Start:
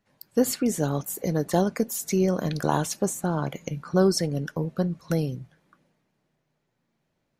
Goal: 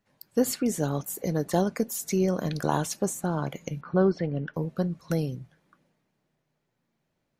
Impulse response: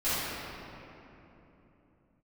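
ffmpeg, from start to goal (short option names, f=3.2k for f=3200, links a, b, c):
-filter_complex "[0:a]asettb=1/sr,asplit=3[a][b][c];[a]atrim=end=3.814[d];[b]atrim=start=3.81:end=4.54,asetpts=PTS-STARTPTS,afade=t=in:d=0.004:c=qsin,afade=t=out:st=0.726:d=0.004:c=qsin,lowpass=f=3.1k:w=0.5412,lowpass=f=3.1k:w=1.3066[e];[c]atrim=start=4.536[f];[d][e]acrossfade=d=0.004:c1=hsin:c2=qsin[g];[g][f]acrossfade=d=0.004:c1=qsin:c2=hsin,volume=-2dB"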